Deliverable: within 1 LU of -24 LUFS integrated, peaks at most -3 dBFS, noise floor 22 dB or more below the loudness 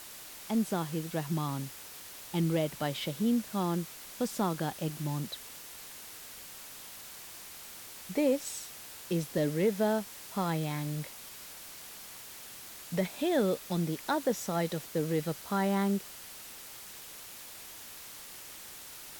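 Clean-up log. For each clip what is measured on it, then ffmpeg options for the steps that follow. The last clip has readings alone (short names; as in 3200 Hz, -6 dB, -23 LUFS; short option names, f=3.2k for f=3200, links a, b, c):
noise floor -47 dBFS; noise floor target -57 dBFS; loudness -34.5 LUFS; peak -17.5 dBFS; loudness target -24.0 LUFS
-> -af "afftdn=nr=10:nf=-47"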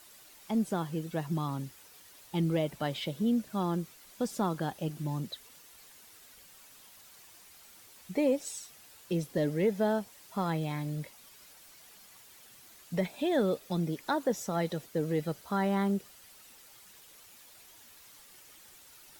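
noise floor -56 dBFS; loudness -32.5 LUFS; peak -18.0 dBFS; loudness target -24.0 LUFS
-> -af "volume=8.5dB"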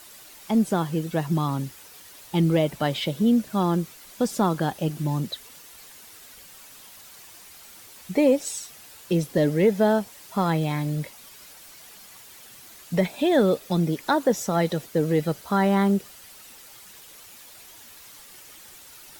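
loudness -24.0 LUFS; peak -9.5 dBFS; noise floor -47 dBFS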